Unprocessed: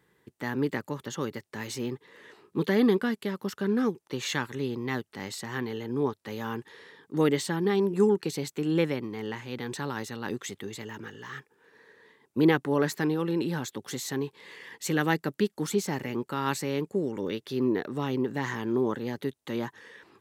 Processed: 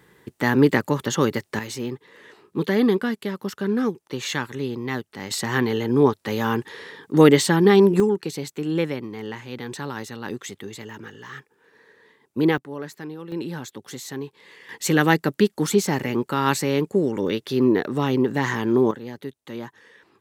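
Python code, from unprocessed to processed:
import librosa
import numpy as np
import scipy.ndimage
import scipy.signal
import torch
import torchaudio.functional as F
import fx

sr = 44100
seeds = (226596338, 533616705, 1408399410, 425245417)

y = fx.gain(x, sr, db=fx.steps((0.0, 12.0), (1.59, 3.5), (5.31, 11.0), (8.0, 2.0), (12.58, -8.0), (13.32, -1.0), (14.69, 8.0), (18.91, -2.0)))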